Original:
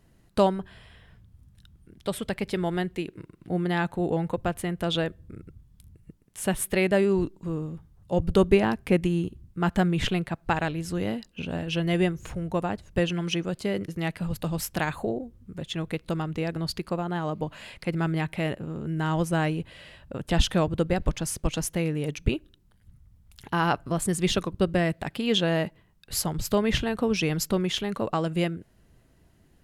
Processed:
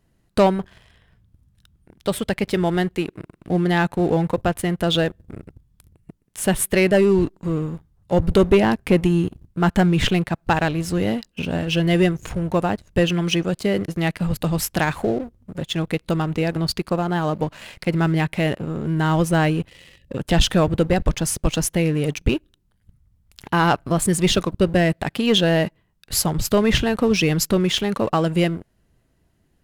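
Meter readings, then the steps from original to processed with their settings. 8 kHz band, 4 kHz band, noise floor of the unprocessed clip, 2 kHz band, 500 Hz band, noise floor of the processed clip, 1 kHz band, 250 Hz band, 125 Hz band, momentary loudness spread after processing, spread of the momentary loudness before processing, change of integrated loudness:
+7.5 dB, +7.0 dB, -61 dBFS, +6.5 dB, +6.5 dB, -65 dBFS, +6.5 dB, +7.0 dB, +7.0 dB, 9 LU, 10 LU, +6.5 dB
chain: spectral delete 19.68–20.17, 560–1700 Hz; sample leveller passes 2

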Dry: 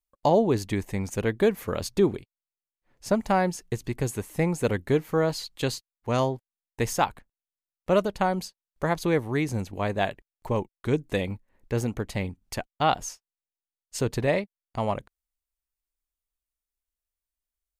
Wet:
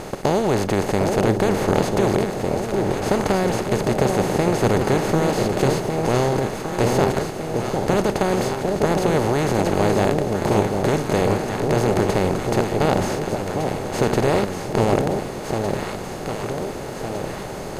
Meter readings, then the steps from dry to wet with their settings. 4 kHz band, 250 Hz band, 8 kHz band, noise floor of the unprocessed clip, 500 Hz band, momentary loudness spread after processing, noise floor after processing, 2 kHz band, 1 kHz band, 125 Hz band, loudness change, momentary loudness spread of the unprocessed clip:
+7.0 dB, +8.0 dB, +7.5 dB, under -85 dBFS, +8.0 dB, 8 LU, -30 dBFS, +6.5 dB, +7.0 dB, +8.0 dB, +6.5 dB, 11 LU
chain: per-bin compression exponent 0.2; low shelf 190 Hz +8.5 dB; on a send: echo with dull and thin repeats by turns 0.754 s, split 850 Hz, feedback 72%, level -3.5 dB; on the sum: gain -6.5 dB

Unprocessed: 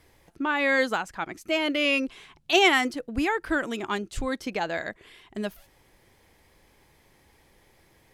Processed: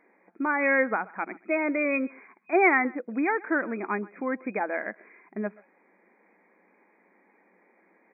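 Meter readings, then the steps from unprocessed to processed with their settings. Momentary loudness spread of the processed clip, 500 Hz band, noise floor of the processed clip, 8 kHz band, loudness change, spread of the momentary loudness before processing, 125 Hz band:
14 LU, 0.0 dB, -64 dBFS, under -40 dB, -1.0 dB, 15 LU, n/a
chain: wow and flutter 16 cents; speakerphone echo 0.13 s, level -22 dB; FFT band-pass 180–2500 Hz

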